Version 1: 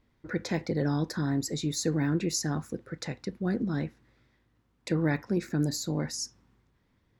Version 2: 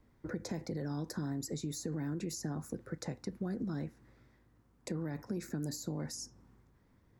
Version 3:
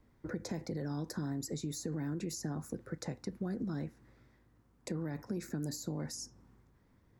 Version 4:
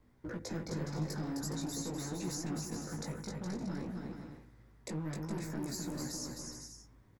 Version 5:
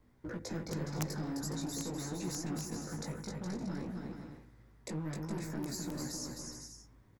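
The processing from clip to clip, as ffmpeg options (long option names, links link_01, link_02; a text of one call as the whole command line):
ffmpeg -i in.wav -filter_complex "[0:a]equalizer=frequency=3200:width=0.94:gain=-8.5,alimiter=limit=-23.5dB:level=0:latency=1:release=50,acrossover=split=190|1000|4700[link_01][link_02][link_03][link_04];[link_01]acompressor=threshold=-46dB:ratio=4[link_05];[link_02]acompressor=threshold=-43dB:ratio=4[link_06];[link_03]acompressor=threshold=-59dB:ratio=4[link_07];[link_04]acompressor=threshold=-48dB:ratio=4[link_08];[link_05][link_06][link_07][link_08]amix=inputs=4:normalize=0,volume=3dB" out.wav
ffmpeg -i in.wav -af anull out.wav
ffmpeg -i in.wav -filter_complex "[0:a]acrossover=split=5600[link_01][link_02];[link_01]asoftclip=type=hard:threshold=-36dB[link_03];[link_03][link_02]amix=inputs=2:normalize=0,flanger=delay=16:depth=3.3:speed=0.5,aecho=1:1:260|416|509.6|565.8|599.5:0.631|0.398|0.251|0.158|0.1,volume=3.5dB" out.wav
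ffmpeg -i in.wav -af "aeval=exprs='(mod(23.7*val(0)+1,2)-1)/23.7':channel_layout=same" out.wav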